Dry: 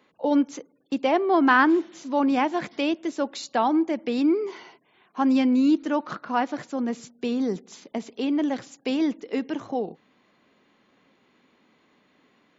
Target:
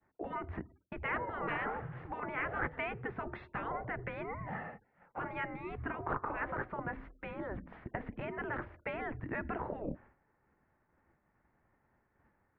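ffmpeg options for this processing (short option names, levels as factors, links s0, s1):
-af "highpass=f=260:t=q:w=0.5412,highpass=f=260:t=q:w=1.307,lowpass=f=2100:t=q:w=0.5176,lowpass=f=2100:t=q:w=0.7071,lowpass=f=2100:t=q:w=1.932,afreqshift=-200,afftfilt=real='re*lt(hypot(re,im),0.1)':imag='im*lt(hypot(re,im),0.1)':win_size=1024:overlap=0.75,agate=range=0.0224:threshold=0.00178:ratio=3:detection=peak,volume=1.58"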